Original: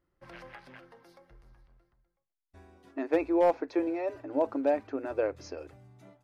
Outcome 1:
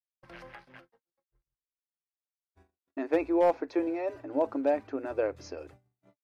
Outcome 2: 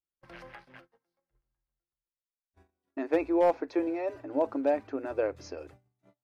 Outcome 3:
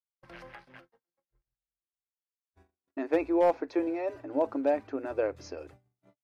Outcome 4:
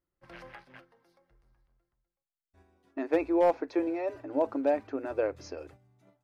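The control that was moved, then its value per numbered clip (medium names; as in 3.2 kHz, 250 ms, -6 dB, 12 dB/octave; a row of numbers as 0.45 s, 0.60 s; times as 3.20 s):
gate, range: -56 dB, -28 dB, -42 dB, -10 dB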